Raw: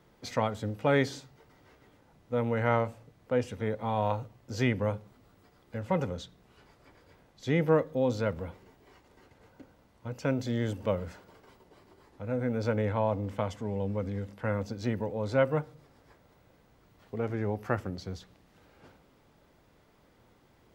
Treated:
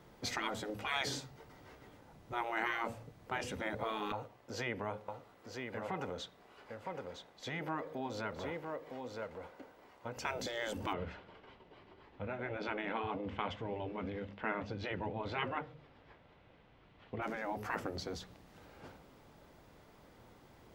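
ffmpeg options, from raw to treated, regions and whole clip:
-filter_complex "[0:a]asettb=1/sr,asplit=3[s0][s1][s2];[s0]atrim=end=4.124[s3];[s1]atrim=start=4.12:end=10.17,asetpts=PTS-STARTPTS,afade=t=in:d=0.004:c=qsin,afade=t=out:st=6.046:d=0.004:c=qsin,acompressor=threshold=0.0178:ratio=2:attack=3.2:release=140:knee=1:detection=peak,bass=f=250:g=-14,treble=f=4000:g=-6,aecho=1:1:962:0.473,atrim=end_sample=266805[s4];[s2]atrim=start=10.166[s5];[s3][s4]acrossfade=d=0.004:c1=hsin:c2=qsin[s6];[s6][s5]acrossfade=d=0.004:c1=qsin:c2=hsin,asettb=1/sr,asplit=3[s7][s8][s9];[s7]atrim=end=10.934[s10];[s8]atrim=start=10.93:end=17.22,asetpts=PTS-STARTPTS,afade=t=in:d=0.004:c=qsin,afade=t=out:st=6.286:d=0.004:c=qsin,flanger=delay=2.3:depth=5.9:regen=-84:speed=1.8:shape=triangular,lowpass=f=3000:t=q:w=2[s11];[s9]atrim=start=17.216[s12];[s10][s11]acrossfade=d=0.004:c1=hsin:c2=qsin[s13];[s13][s12]acrossfade=d=0.004:c1=qsin:c2=hsin,afftfilt=real='re*lt(hypot(re,im),0.0794)':imag='im*lt(hypot(re,im),0.0794)':win_size=1024:overlap=0.75,equalizer=f=790:w=1.5:g=2,volume=1.33"

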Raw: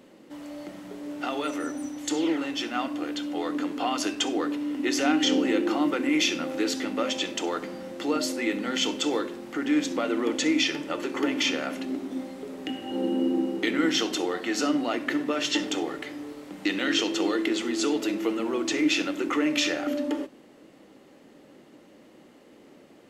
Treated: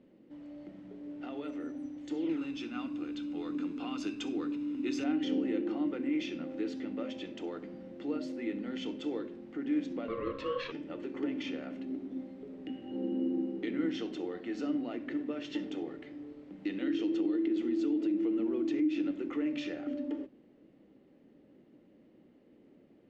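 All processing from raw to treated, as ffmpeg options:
-filter_complex "[0:a]asettb=1/sr,asplit=3[s0][s1][s2];[s0]atrim=end=2.294[s3];[s1]atrim=start=2.29:end=5.04,asetpts=PTS-STARTPTS,afade=t=in:d=0.004:c=qsin,afade=t=out:st=2.746:d=0.004:c=qsin,highshelf=f=3200:g=9.5,aecho=1:1:0.8:0.51,atrim=end_sample=121275[s4];[s2]atrim=start=5.036[s5];[s3][s4]acrossfade=d=0.004:c1=hsin:c2=qsin[s6];[s6][s5]acrossfade=d=0.004:c1=qsin:c2=hsin,asettb=1/sr,asplit=3[s7][s8][s9];[s7]atrim=end=10.084[s10];[s8]atrim=start=10.08:end=10.72,asetpts=PTS-STARTPTS,afade=t=in:d=0.004:c=qsin,afade=t=out:st=0.636:d=0.004:c=qsin,acontrast=36,highpass=150,lowpass=3800,aeval=exprs='val(0)*sin(2*PI*800*n/s)':c=same[s11];[s9]atrim=start=10.716[s12];[s10][s11]acrossfade=d=0.004:c1=hsin:c2=qsin[s13];[s13][s12]acrossfade=d=0.004:c1=qsin:c2=hsin,asettb=1/sr,asplit=3[s14][s15][s16];[s14]atrim=end=16.814[s17];[s15]atrim=start=16.81:end=19.11,asetpts=PTS-STARTPTS,afade=t=in:d=0.004:c=qsin,afade=t=out:st=2.296:d=0.004:c=qsin,equalizer=f=310:t=o:w=0.25:g=13,acompressor=threshold=0.112:ratio=5:attack=3.2:release=140:knee=1:detection=peak[s18];[s16]atrim=start=19.106[s19];[s17][s18]acrossfade=d=0.004:c1=hsin:c2=qsin[s20];[s20][s19]acrossfade=d=0.004:c1=qsin:c2=hsin,lowpass=1900,equalizer=f=1100:w=0.57:g=-14.5,bandreject=f=50:t=h:w=6,bandreject=f=100:t=h:w=6,bandreject=f=150:t=h:w=6,volume=0.668"

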